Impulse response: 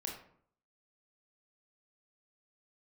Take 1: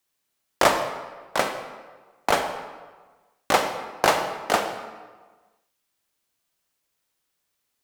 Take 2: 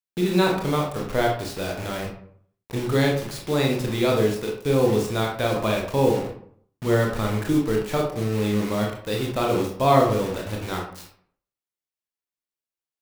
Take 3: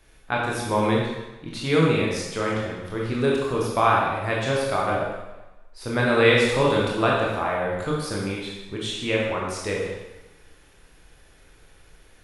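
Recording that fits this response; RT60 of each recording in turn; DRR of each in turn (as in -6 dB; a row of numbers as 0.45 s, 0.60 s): 2; 1.4 s, 0.60 s, 1.0 s; 6.0 dB, -0.5 dB, -4.0 dB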